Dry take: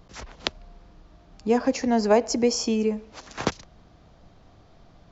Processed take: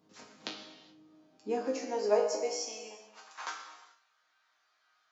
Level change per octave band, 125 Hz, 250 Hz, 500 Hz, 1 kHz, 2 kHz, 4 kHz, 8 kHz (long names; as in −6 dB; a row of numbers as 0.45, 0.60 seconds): below −20 dB, −18.5 dB, −7.5 dB, −9.5 dB, −10.0 dB, −10.0 dB, can't be measured